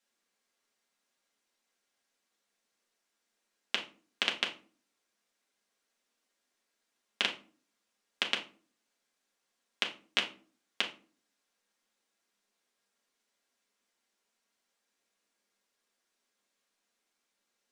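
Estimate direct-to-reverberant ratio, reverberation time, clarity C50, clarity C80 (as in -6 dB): -1.5 dB, no single decay rate, 11.5 dB, 16.5 dB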